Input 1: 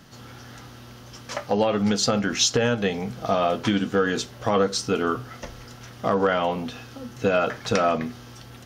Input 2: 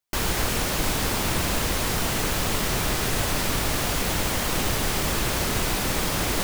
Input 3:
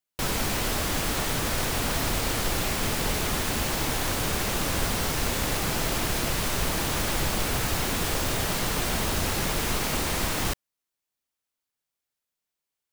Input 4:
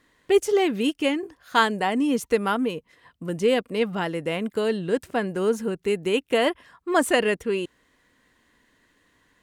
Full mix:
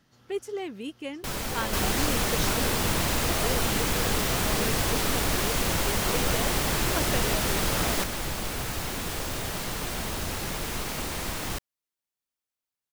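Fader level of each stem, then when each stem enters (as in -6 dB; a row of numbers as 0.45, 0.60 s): -16.0, -2.5, -5.0, -13.0 dB; 0.00, 1.60, 1.05, 0.00 s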